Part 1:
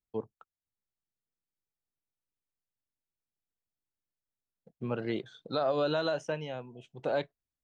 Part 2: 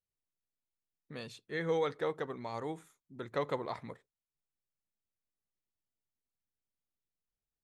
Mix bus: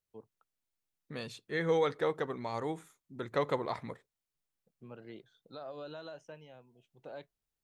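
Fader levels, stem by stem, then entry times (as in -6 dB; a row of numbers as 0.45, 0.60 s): -15.5, +3.0 dB; 0.00, 0.00 s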